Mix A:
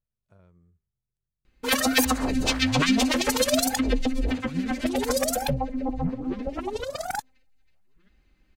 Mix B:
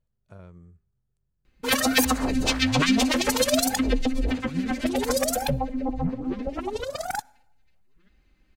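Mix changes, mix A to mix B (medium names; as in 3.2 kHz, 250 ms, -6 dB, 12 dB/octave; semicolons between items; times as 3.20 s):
speech +11.0 dB; reverb: on, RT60 0.80 s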